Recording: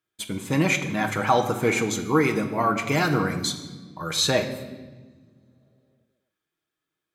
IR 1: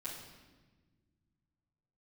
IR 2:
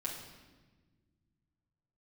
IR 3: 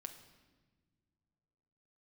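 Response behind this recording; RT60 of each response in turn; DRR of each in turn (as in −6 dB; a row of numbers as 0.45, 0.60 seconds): 3; 1.3 s, 1.3 s, non-exponential decay; −10.0, −5.0, 4.5 decibels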